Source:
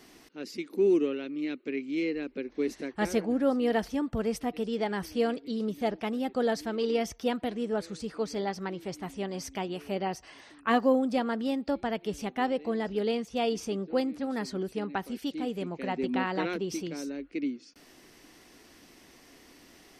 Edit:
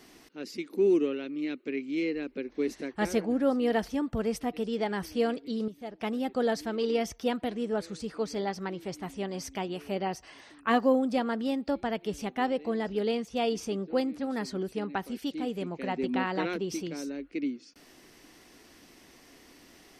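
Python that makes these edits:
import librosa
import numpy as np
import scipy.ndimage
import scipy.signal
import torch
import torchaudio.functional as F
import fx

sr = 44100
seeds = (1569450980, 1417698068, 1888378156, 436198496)

y = fx.edit(x, sr, fx.clip_gain(start_s=5.68, length_s=0.32, db=-11.0), tone=tone)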